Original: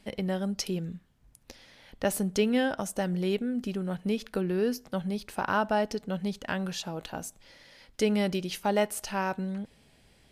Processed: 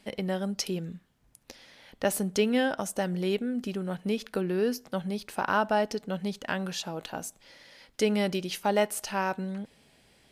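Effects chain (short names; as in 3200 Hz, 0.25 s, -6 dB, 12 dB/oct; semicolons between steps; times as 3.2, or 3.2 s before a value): low shelf 110 Hz -10.5 dB; gain +1.5 dB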